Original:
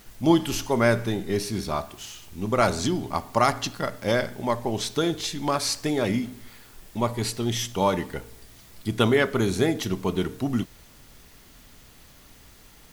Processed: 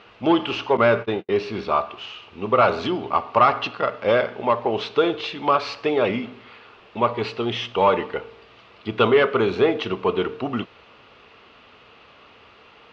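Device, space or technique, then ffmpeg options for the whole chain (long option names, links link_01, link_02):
overdrive pedal into a guitar cabinet: -filter_complex "[0:a]asplit=2[link_01][link_02];[link_02]highpass=frequency=720:poles=1,volume=15dB,asoftclip=type=tanh:threshold=-6dB[link_03];[link_01][link_03]amix=inputs=2:normalize=0,lowpass=frequency=1300:poles=1,volume=-6dB,highpass=80,equalizer=frequency=160:width_type=q:width=4:gain=-7,equalizer=frequency=280:width_type=q:width=4:gain=-4,equalizer=frequency=460:width_type=q:width=4:gain=6,equalizer=frequency=1200:width_type=q:width=4:gain=6,equalizer=frequency=1800:width_type=q:width=4:gain=-4,equalizer=frequency=2700:width_type=q:width=4:gain=9,lowpass=frequency=4200:width=0.5412,lowpass=frequency=4200:width=1.3066,asettb=1/sr,asplit=3[link_04][link_05][link_06];[link_04]atrim=end=0.774[link_07];[link_05]atrim=start=0.77:end=1.29,asetpts=PTS-STARTPTS,afade=type=in:duration=0.004:curve=qsin,afade=type=out:start_time=0.516:duration=0.004:curve=qsin,agate=range=-50dB:threshold=-24dB:ratio=16:detection=peak[link_08];[link_06]atrim=start=1.286[link_09];[link_07][link_08]acrossfade=duration=0.004:curve1=hsin:curve2=qsin[link_10];[link_10][link_09]acrossfade=duration=0.004:curve1=qsin:curve2=hsin"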